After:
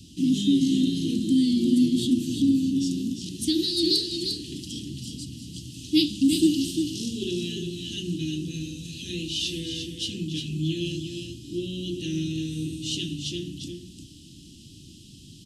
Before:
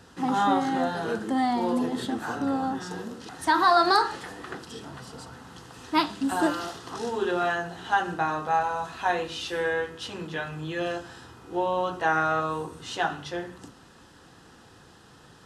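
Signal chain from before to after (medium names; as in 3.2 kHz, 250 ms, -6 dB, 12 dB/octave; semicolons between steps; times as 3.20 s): Chebyshev band-stop 320–2900 Hz, order 4; on a send: delay 350 ms -6.5 dB; on the sum: trim +7.5 dB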